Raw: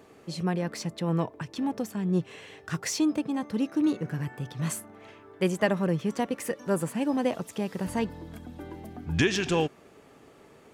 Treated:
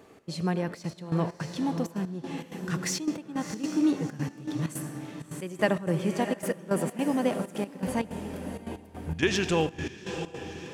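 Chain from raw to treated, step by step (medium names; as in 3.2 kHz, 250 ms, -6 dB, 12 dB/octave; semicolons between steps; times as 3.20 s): echo that smears into a reverb 671 ms, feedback 41%, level -8 dB; on a send at -13 dB: reverberation RT60 1.0 s, pre-delay 67 ms; on the sum: trance gate "xx.xxxxx.x.." 161 bpm -12 dB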